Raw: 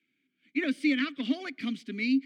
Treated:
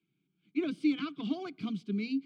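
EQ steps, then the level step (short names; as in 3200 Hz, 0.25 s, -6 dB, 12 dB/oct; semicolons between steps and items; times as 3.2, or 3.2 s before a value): LPF 1600 Hz 6 dB/oct; resonant low shelf 230 Hz +7 dB, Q 1.5; fixed phaser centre 370 Hz, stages 8; +4.0 dB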